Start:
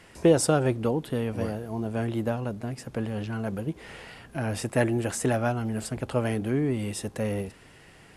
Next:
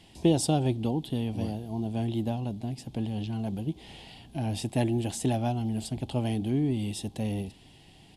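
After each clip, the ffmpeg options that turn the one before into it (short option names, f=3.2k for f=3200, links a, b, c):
-af "firequalizer=gain_entry='entry(310,0);entry(490,-11);entry(770,0);entry(1300,-19);entry(3300,5);entry(5900,-4)':delay=0.05:min_phase=1"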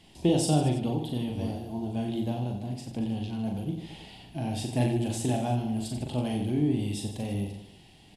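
-filter_complex "[0:a]flanger=delay=4.5:depth=8.4:regen=86:speed=0.25:shape=triangular,asplit=2[a][b];[b]aecho=0:1:40|90|152.5|230.6|328.3:0.631|0.398|0.251|0.158|0.1[c];[a][c]amix=inputs=2:normalize=0,volume=2.5dB"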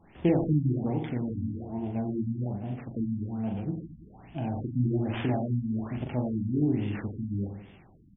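-af "acrusher=samples=8:mix=1:aa=0.000001,afftfilt=real='re*lt(b*sr/1024,290*pow(3700/290,0.5+0.5*sin(2*PI*1.2*pts/sr)))':imag='im*lt(b*sr/1024,290*pow(3700/290,0.5+0.5*sin(2*PI*1.2*pts/sr)))':win_size=1024:overlap=0.75"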